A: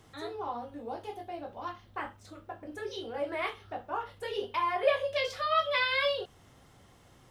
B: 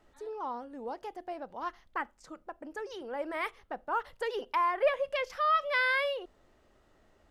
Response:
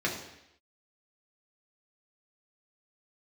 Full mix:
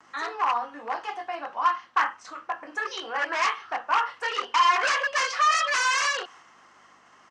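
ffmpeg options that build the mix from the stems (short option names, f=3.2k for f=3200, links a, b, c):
-filter_complex "[0:a]agate=range=-33dB:threshold=-52dB:ratio=3:detection=peak,aeval=exprs='0.0266*(abs(mod(val(0)/0.0266+3,4)-2)-1)':c=same,equalizer=f=2k:t=o:w=2.8:g=15,volume=2dB[a];[1:a]aeval=exprs='val(0)+0.001*(sin(2*PI*50*n/s)+sin(2*PI*2*50*n/s)/2+sin(2*PI*3*50*n/s)/3+sin(2*PI*4*50*n/s)/4+sin(2*PI*5*50*n/s)/5)':c=same,acompressor=mode=upward:threshold=-37dB:ratio=2.5,adelay=5.8,volume=-3.5dB[b];[a][b]amix=inputs=2:normalize=0,highpass=370,equalizer=f=410:t=q:w=4:g=-7,equalizer=f=590:t=q:w=4:g=-7,equalizer=f=1.1k:t=q:w=4:g=7,equalizer=f=2.3k:t=q:w=4:g=-4,equalizer=f=3.6k:t=q:w=4:g=-10,equalizer=f=6.1k:t=q:w=4:g=4,lowpass=f=7.8k:w=0.5412,lowpass=f=7.8k:w=1.3066"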